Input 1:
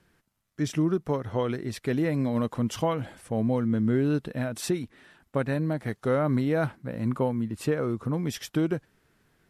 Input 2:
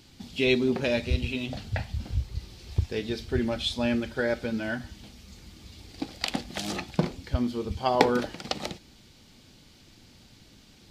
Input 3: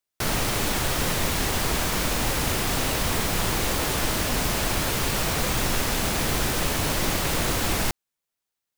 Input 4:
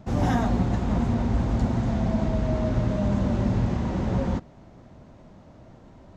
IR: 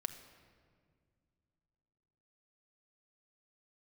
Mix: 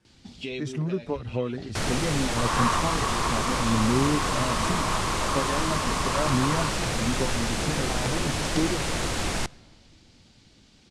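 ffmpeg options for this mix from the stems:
-filter_complex "[0:a]lowshelf=frequency=390:gain=4,acrusher=bits=10:mix=0:aa=0.000001,asplit=2[link_01][link_02];[link_02]adelay=6.2,afreqshift=1.6[link_03];[link_01][link_03]amix=inputs=2:normalize=1,volume=-2dB,asplit=2[link_04][link_05];[1:a]acompressor=threshold=-30dB:ratio=5,adelay=50,volume=-2dB[link_06];[2:a]adelay=1550,volume=-4.5dB,asplit=2[link_07][link_08];[link_08]volume=-11.5dB[link_09];[3:a]asoftclip=type=hard:threshold=-26.5dB,highpass=frequency=1100:width_type=q:width=7.2,adelay=2300,volume=1.5dB[link_10];[link_05]apad=whole_len=483167[link_11];[link_06][link_11]sidechaincompress=threshold=-33dB:ratio=8:attack=31:release=271[link_12];[4:a]atrim=start_sample=2205[link_13];[link_09][link_13]afir=irnorm=-1:irlink=0[link_14];[link_04][link_12][link_07][link_10][link_14]amix=inputs=5:normalize=0,lowpass=frequency=9500:width=0.5412,lowpass=frequency=9500:width=1.3066"

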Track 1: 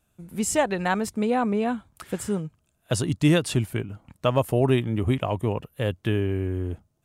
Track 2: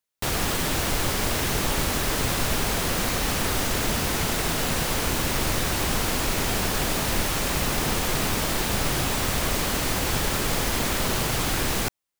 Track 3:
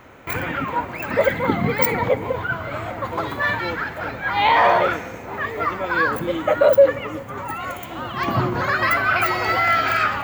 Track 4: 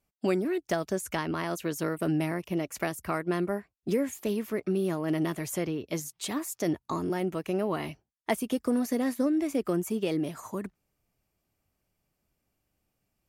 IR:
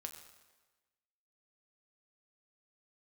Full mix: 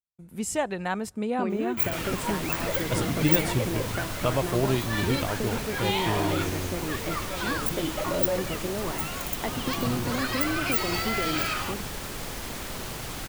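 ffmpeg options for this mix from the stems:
-filter_complex "[0:a]agate=range=-33dB:threshold=-49dB:ratio=3:detection=peak,volume=-5.5dB,asplit=2[link_01][link_02];[link_02]volume=-21.5dB[link_03];[1:a]adelay=1700,volume=-10.5dB[link_04];[2:a]bass=frequency=250:gain=7,treble=frequency=4000:gain=2,alimiter=limit=-11.5dB:level=0:latency=1,aexciter=amount=2.9:drive=7.4:freq=2600,adelay=1500,volume=-11dB[link_05];[3:a]lowpass=3100,acompressor=threshold=-29dB:ratio=6,adelay=1150,volume=-2dB,asplit=2[link_06][link_07];[link_07]volume=-3dB[link_08];[4:a]atrim=start_sample=2205[link_09];[link_03][link_08]amix=inputs=2:normalize=0[link_10];[link_10][link_09]afir=irnorm=-1:irlink=0[link_11];[link_01][link_04][link_05][link_06][link_11]amix=inputs=5:normalize=0"

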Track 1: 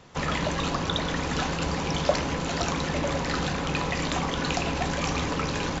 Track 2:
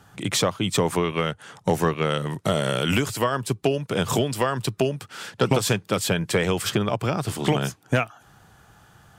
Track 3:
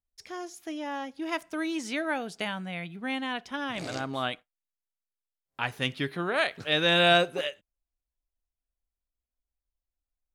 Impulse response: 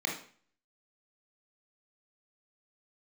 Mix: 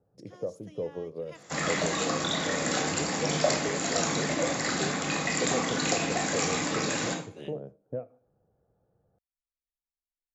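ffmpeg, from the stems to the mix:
-filter_complex "[0:a]highpass=180,equalizer=frequency=8800:width_type=o:width=1.4:gain=5.5,adelay=1350,volume=-3.5dB,asplit=2[link_01][link_02];[link_02]volume=-6.5dB[link_03];[1:a]lowpass=frequency=510:width_type=q:width=4.9,volume=-19.5dB,asplit=2[link_04][link_05];[link_05]volume=-20dB[link_06];[2:a]lowpass=6800,acompressor=threshold=-34dB:ratio=2,volume=-16.5dB[link_07];[3:a]atrim=start_sample=2205[link_08];[link_03][link_06]amix=inputs=2:normalize=0[link_09];[link_09][link_08]afir=irnorm=-1:irlink=0[link_10];[link_01][link_04][link_07][link_10]amix=inputs=4:normalize=0,equalizer=frequency=13000:width=0.32:gain=12"

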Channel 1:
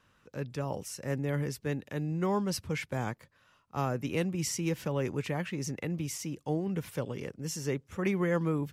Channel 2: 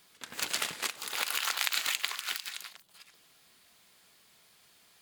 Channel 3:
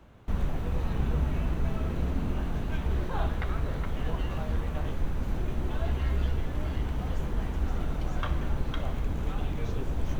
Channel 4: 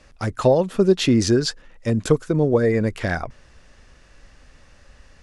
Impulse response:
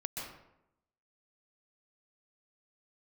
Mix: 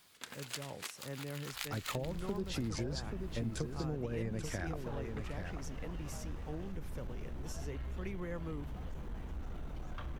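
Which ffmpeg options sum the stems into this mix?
-filter_complex "[0:a]volume=-10.5dB,asplit=2[link_01][link_02];[1:a]volume=-2.5dB[link_03];[2:a]asoftclip=type=tanh:threshold=-22dB,adelay=1750,volume=-10.5dB[link_04];[3:a]acrossover=split=170[link_05][link_06];[link_06]acompressor=threshold=-23dB:ratio=6[link_07];[link_05][link_07]amix=inputs=2:normalize=0,adelay=1500,volume=-10dB,asplit=2[link_08][link_09];[link_09]volume=-8dB[link_10];[link_02]apad=whole_len=221032[link_11];[link_03][link_11]sidechaincompress=threshold=-58dB:ratio=4:attack=16:release=137[link_12];[link_10]aecho=0:1:834:1[link_13];[link_01][link_12][link_04][link_08][link_13]amix=inputs=5:normalize=0,acompressor=threshold=-38dB:ratio=2"

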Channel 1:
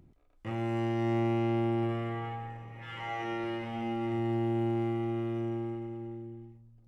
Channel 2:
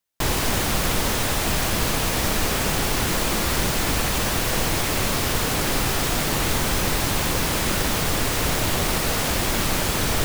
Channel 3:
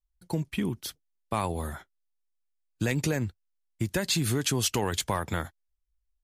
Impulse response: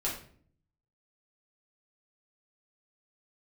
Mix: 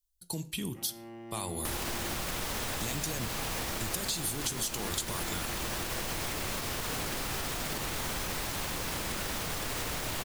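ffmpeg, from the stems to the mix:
-filter_complex "[0:a]highpass=frequency=140:width=0.5412,highpass=frequency=140:width=1.3066,adelay=300,volume=-14dB[link_01];[1:a]acrossover=split=560|1300[link_02][link_03][link_04];[link_02]acompressor=threshold=-33dB:ratio=4[link_05];[link_03]acompressor=threshold=-39dB:ratio=4[link_06];[link_04]acompressor=threshold=-31dB:ratio=4[link_07];[link_05][link_06][link_07]amix=inputs=3:normalize=0,alimiter=level_in=2dB:limit=-24dB:level=0:latency=1:release=172,volume=-2dB,adelay=1450,volume=3dB[link_08];[2:a]alimiter=limit=-20.5dB:level=0:latency=1,aexciter=amount=2.6:drive=8.9:freq=3000,volume=-7dB,asplit=2[link_09][link_10];[link_10]volume=-14.5dB[link_11];[3:a]atrim=start_sample=2205[link_12];[link_11][link_12]afir=irnorm=-1:irlink=0[link_13];[link_01][link_08][link_09][link_13]amix=inputs=4:normalize=0,acompressor=threshold=-30dB:ratio=6"

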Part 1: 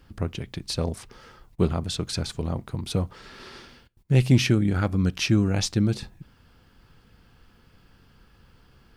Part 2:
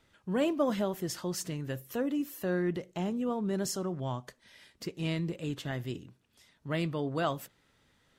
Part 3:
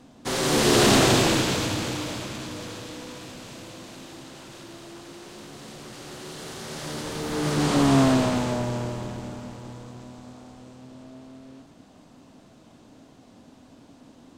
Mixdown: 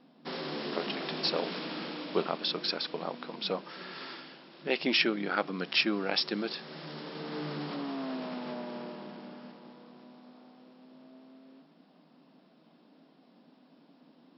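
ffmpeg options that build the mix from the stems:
ffmpeg -i stem1.wav -i stem2.wav -i stem3.wav -filter_complex "[0:a]highpass=490,adelay=550,volume=1.5dB[link_01];[1:a]aeval=exprs='sgn(val(0))*max(abs(val(0))-0.00316,0)':channel_layout=same,alimiter=level_in=4.5dB:limit=-24dB:level=0:latency=1:release=190,volume=-4.5dB,volume=-15dB[link_02];[2:a]alimiter=limit=-20dB:level=0:latency=1:release=81,volume=-9dB[link_03];[link_01][link_02][link_03]amix=inputs=3:normalize=0,afftfilt=real='re*between(b*sr/4096,150,5500)':imag='im*between(b*sr/4096,150,5500)':win_size=4096:overlap=0.75" out.wav

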